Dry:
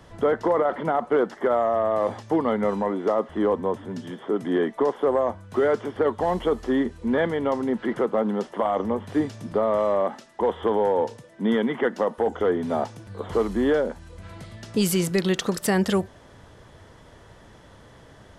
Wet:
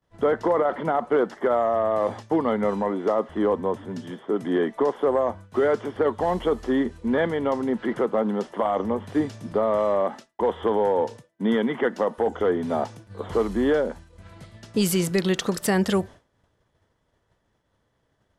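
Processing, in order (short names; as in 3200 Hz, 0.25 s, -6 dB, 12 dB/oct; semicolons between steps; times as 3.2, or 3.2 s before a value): expander -35 dBFS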